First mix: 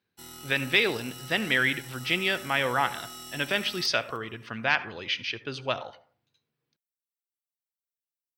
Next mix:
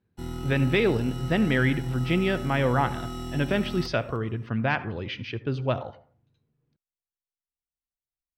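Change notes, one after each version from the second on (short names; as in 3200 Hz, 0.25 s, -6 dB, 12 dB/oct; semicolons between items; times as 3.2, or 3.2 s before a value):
background +6.5 dB; master: add tilt -4.5 dB/oct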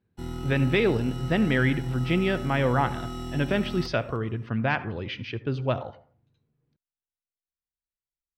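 master: add high shelf 8600 Hz -4.5 dB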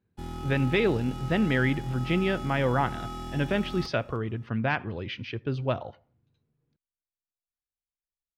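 speech: send -10.5 dB; background: remove ripple EQ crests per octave 2, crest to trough 13 dB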